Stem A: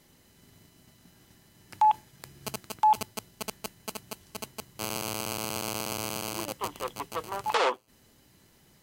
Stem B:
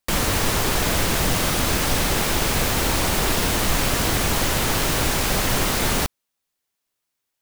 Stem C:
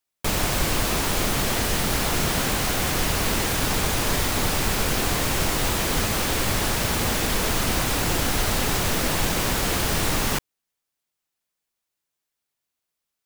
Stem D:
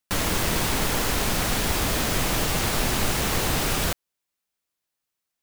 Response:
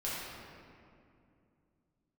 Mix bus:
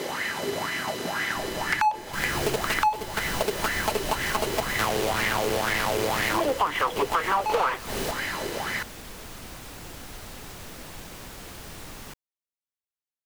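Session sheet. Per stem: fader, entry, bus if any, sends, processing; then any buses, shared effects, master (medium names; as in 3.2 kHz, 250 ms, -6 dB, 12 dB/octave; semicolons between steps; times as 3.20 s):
+1.5 dB, 0.00 s, no send, overdrive pedal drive 36 dB, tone 3.1 kHz, clips at -12.5 dBFS; sweeping bell 2 Hz 400–2000 Hz +16 dB
-11.0 dB, 2.05 s, no send, none
-18.0 dB, 1.75 s, no send, none
-16.0 dB, 1.25 s, no send, resonances exaggerated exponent 1.5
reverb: none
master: compression 6:1, threshold -22 dBFS, peak gain reduction 20 dB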